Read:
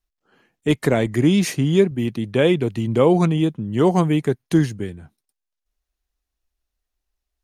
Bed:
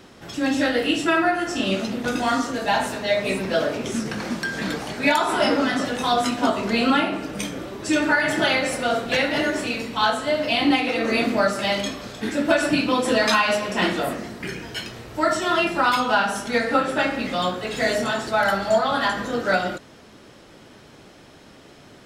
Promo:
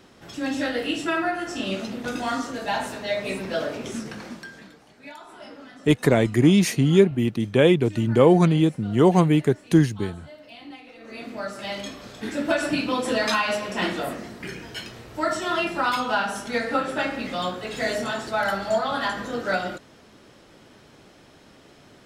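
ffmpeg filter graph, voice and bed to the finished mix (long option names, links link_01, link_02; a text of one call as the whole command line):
ffmpeg -i stem1.wav -i stem2.wav -filter_complex "[0:a]adelay=5200,volume=0dB[link_01];[1:a]volume=14dB,afade=type=out:start_time=3.88:duration=0.83:silence=0.125893,afade=type=in:start_time=10.99:duration=1.38:silence=0.112202[link_02];[link_01][link_02]amix=inputs=2:normalize=0" out.wav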